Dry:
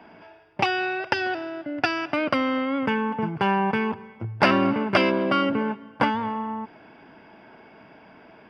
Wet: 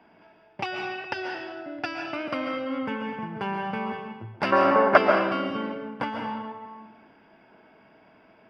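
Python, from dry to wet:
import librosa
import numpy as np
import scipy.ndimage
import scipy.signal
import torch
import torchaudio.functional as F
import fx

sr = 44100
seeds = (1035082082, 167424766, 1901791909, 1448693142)

y = fx.band_shelf(x, sr, hz=890.0, db=14.0, octaves=2.5, at=(4.52, 4.98))
y = fx.rev_freeverb(y, sr, rt60_s=1.0, hf_ratio=0.9, predelay_ms=95, drr_db=2.5)
y = y * 10.0 ** (-8.5 / 20.0)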